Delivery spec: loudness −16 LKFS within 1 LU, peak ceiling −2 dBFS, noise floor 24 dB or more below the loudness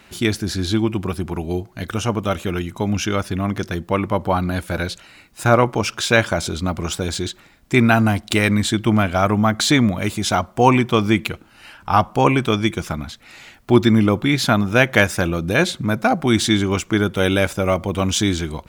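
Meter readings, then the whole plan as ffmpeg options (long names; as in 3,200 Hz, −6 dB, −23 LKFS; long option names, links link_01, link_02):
integrated loudness −19.0 LKFS; sample peak −1.0 dBFS; target loudness −16.0 LKFS
→ -af "volume=3dB,alimiter=limit=-2dB:level=0:latency=1"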